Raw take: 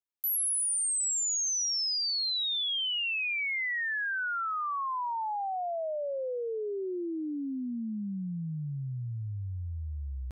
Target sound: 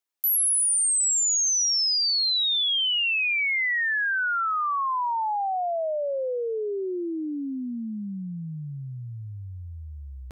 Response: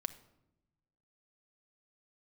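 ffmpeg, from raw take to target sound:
-af "lowshelf=f=180:g=-11,volume=7dB"

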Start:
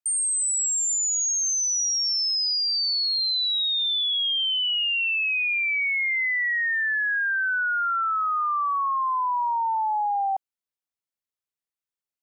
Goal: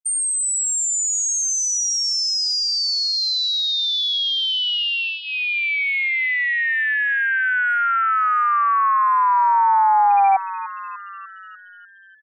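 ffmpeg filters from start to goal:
-filter_complex "[0:a]acrossover=split=1000|3600[a][b][c];[a]acontrast=31[d];[d][b][c]amix=inputs=3:normalize=0,aeval=exprs='0.141*(cos(1*acos(clip(val(0)/0.141,-1,1)))-cos(1*PI/2))+0.0251*(cos(3*acos(clip(val(0)/0.141,-1,1)))-cos(3*PI/2))+0.00316*(cos(7*acos(clip(val(0)/0.141,-1,1)))-cos(7*PI/2))':c=same,afftfilt=real='re*gte(hypot(re,im),0.2)':imag='im*gte(hypot(re,im),0.2)':win_size=1024:overlap=0.75,bandreject=f=2.6k:w=14,asplit=8[e][f][g][h][i][j][k][l];[f]adelay=297,afreqshift=130,volume=-15dB[m];[g]adelay=594,afreqshift=260,volume=-19dB[n];[h]adelay=891,afreqshift=390,volume=-23dB[o];[i]adelay=1188,afreqshift=520,volume=-27dB[p];[j]adelay=1485,afreqshift=650,volume=-31.1dB[q];[k]adelay=1782,afreqshift=780,volume=-35.1dB[r];[l]adelay=2079,afreqshift=910,volume=-39.1dB[s];[e][m][n][o][p][q][r][s]amix=inputs=8:normalize=0,volume=6.5dB"

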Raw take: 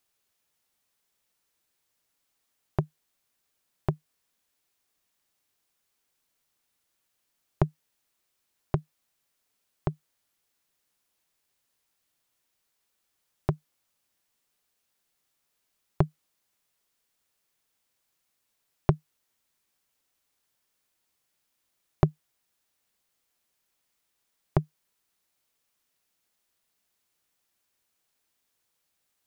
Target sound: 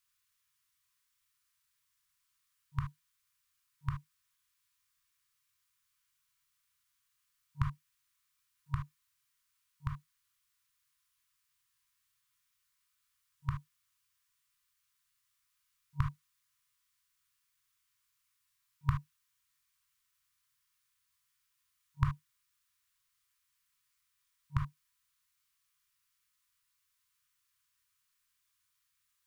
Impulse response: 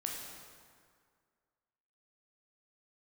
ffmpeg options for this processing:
-filter_complex "[1:a]atrim=start_sample=2205,atrim=end_sample=3528[a];[0:a][a]afir=irnorm=-1:irlink=0,afftfilt=real='re*(1-between(b*sr/4096,140,950))':imag='im*(1-between(b*sr/4096,140,950))':win_size=4096:overlap=0.75,volume=-1dB"

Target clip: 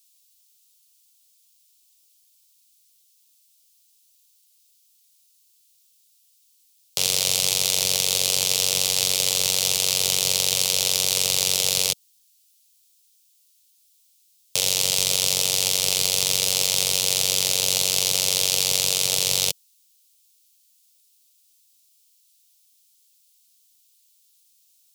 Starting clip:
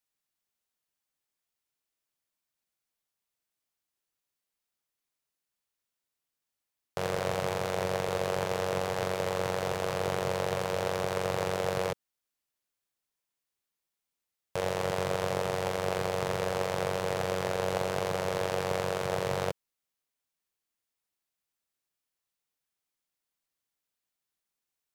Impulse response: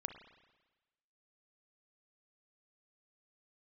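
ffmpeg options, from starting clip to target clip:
-filter_complex "[0:a]aexciter=amount=10.9:drive=8.8:freq=2.6k,acrossover=split=280|3000[a][b][c];[b]acompressor=threshold=-25dB:ratio=6[d];[a][d][c]amix=inputs=3:normalize=0,volume=-2.5dB"

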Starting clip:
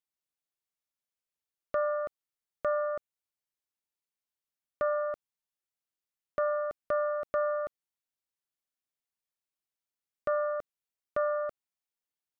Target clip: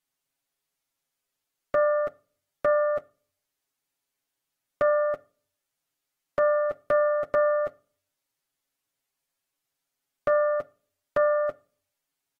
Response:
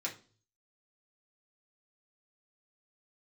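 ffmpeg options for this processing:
-filter_complex "[0:a]aecho=1:1:7.3:0.68,asplit=2[a][b];[1:a]atrim=start_sample=2205,asetrate=38367,aresample=44100,lowshelf=f=450:g=2.5[c];[b][c]afir=irnorm=-1:irlink=0,volume=-16dB[d];[a][d]amix=inputs=2:normalize=0,volume=6dB" -ar 48000 -c:a aac -b:a 48k

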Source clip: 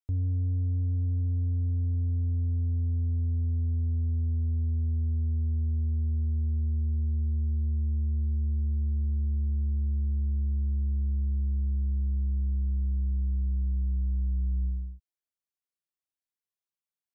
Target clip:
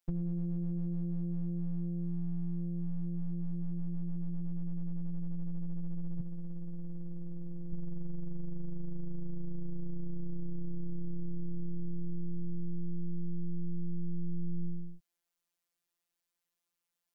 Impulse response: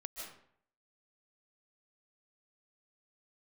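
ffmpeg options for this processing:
-filter_complex "[0:a]asettb=1/sr,asplit=3[a][b][c];[a]atrim=end=6.204[d];[b]atrim=start=6.2:end=7.73,asetpts=PTS-STARTPTS,afade=t=in:d=0.004:c=qsin,afade=t=out:st=1.526:d=0.004:c=qsin,highpass=f=100:p=1[e];[c]atrim=start=7.726[f];[d][e]acrossfade=d=0.004:c1=hsin:c2=qsin[g];[g][f]acrossfade=d=0.004:c1=qsin:c2=hsin,afftfilt=real='hypot(re,im)*cos(PI*b)':imag='0':win_size=1024:overlap=0.75,volume=10dB"

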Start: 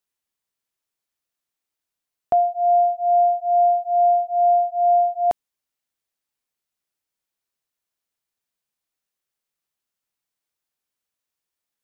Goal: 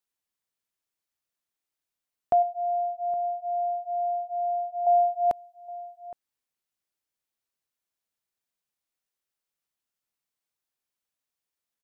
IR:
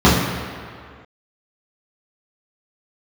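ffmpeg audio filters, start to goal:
-filter_complex "[0:a]asettb=1/sr,asplit=3[a][b][c];[a]atrim=end=2.424[d];[b]atrim=start=2.42:end=4.87,asetpts=PTS-STARTPTS,afade=t=in:d=0.004:c=qsin,afade=t=out:st=2.446:d=0.004:c=qsin,acompressor=threshold=-28dB:ratio=2[e];[c]atrim=start=4.866[f];[d][e]acrossfade=d=0.004:c1=hsin:c2=qsin[g];[g][f]acrossfade=d=0.004:c1=qsin:c2=hsin,asplit=2[h][i];[i]adelay=816.3,volume=-18dB,highshelf=f=4k:g=-18.4[j];[h][j]amix=inputs=2:normalize=0,volume=-3.5dB"

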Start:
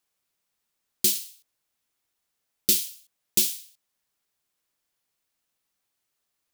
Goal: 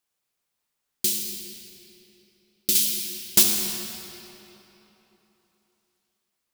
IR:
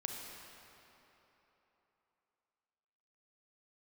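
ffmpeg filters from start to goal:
-filter_complex "[0:a]asettb=1/sr,asplit=3[a][b][c];[a]atrim=end=2.754[d];[b]atrim=start=2.75:end=3.43,asetpts=PTS-STARTPTS,afade=t=in:d=0.004:c=qsin,afade=t=out:st=0.676:d=0.004:c=qsin,aeval=exprs='0.501*sin(PI/2*2*val(0)/0.501)':c=same[e];[c]atrim=start=3.426[f];[d][e]acrossfade=d=0.004:c1=hsin:c2=qsin[g];[g][f]acrossfade=d=0.004:c1=qsin:c2=hsin[h];[1:a]atrim=start_sample=2205[i];[h][i]afir=irnorm=-1:irlink=0"

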